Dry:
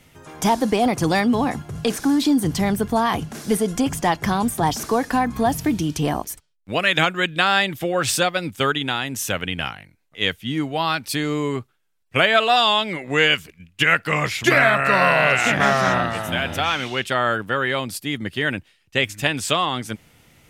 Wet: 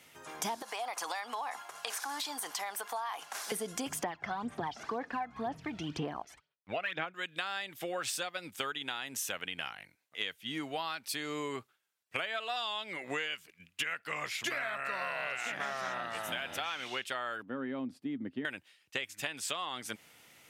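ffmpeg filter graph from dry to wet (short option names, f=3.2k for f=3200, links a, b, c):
-filter_complex "[0:a]asettb=1/sr,asplit=3[a][b][c];[a]atrim=end=0.624[d];[b]atrim=start=0.62:end=3.52,asetpts=PTS-STARTPTS,afade=t=in:d=0.004:c=qsin,afade=t=out:st=2.896:d=0.004:c=qsin,highpass=f=870:t=q:w=1.8,acompressor=threshold=-28dB:ratio=2.5:attack=3.2:release=140:knee=1:detection=peak[e];[c]atrim=start=3.516[f];[d][e]acrossfade=d=0.004:c1=hsin:c2=qsin[g];[g][f]acrossfade=d=0.004:c1=qsin:c2=hsin,asettb=1/sr,asplit=3[h][i][j];[h]atrim=end=4.034[k];[i]atrim=start=4.03:end=7.14,asetpts=PTS-STARTPTS,afade=t=in:d=0.004:c=qsin,afade=t=out:st=3.106:d=0.004:c=qsin,lowpass=2.6k,aphaser=in_gain=1:out_gain=1:delay=1.5:decay=0.57:speed=2:type=sinusoidal[l];[j]atrim=start=7.136[m];[k][l]acrossfade=d=0.004:c1=hsin:c2=qsin[n];[n][m]acrossfade=d=0.004:c1=qsin:c2=hsin,asettb=1/sr,asplit=3[o][p][q];[o]atrim=end=17.424[r];[p]atrim=start=17.42:end=18.45,asetpts=PTS-STARTPTS,afade=t=in:d=0.004:c=qsin,afade=t=out:st=1.026:d=0.004:c=qsin,bandpass=f=170:t=q:w=0.66,equalizer=f=260:t=o:w=0.37:g=14[s];[q]atrim=start=18.446[t];[r][s]acrossfade=d=0.004:c1=hsin:c2=qsin[u];[u][t]acrossfade=d=0.004:c1=qsin:c2=hsin,highpass=f=700:p=1,acompressor=threshold=-31dB:ratio=8,volume=-2.5dB"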